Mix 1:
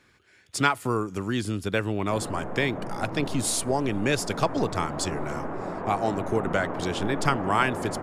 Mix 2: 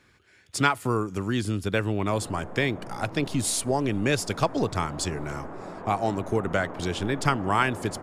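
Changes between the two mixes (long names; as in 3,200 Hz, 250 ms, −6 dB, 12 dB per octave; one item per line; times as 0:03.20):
speech: add parametric band 63 Hz +3.5 dB 2.4 octaves
background −6.0 dB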